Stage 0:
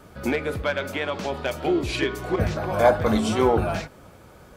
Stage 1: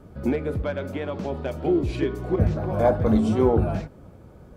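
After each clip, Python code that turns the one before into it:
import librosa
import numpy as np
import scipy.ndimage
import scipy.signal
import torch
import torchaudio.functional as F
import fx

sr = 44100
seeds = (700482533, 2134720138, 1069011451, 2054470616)

y = fx.tilt_shelf(x, sr, db=8.5, hz=740.0)
y = F.gain(torch.from_numpy(y), -4.0).numpy()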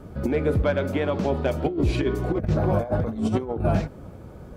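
y = fx.over_compress(x, sr, threshold_db=-24.0, ratio=-0.5)
y = F.gain(torch.from_numpy(y), 2.5).numpy()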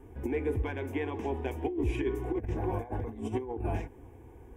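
y = fx.fixed_phaser(x, sr, hz=880.0, stages=8)
y = F.gain(torch.from_numpy(y), -5.5).numpy()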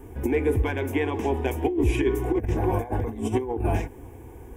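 y = fx.high_shelf(x, sr, hz=6300.0, db=9.5)
y = F.gain(torch.from_numpy(y), 8.0).numpy()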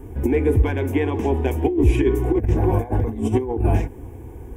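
y = fx.low_shelf(x, sr, hz=430.0, db=7.5)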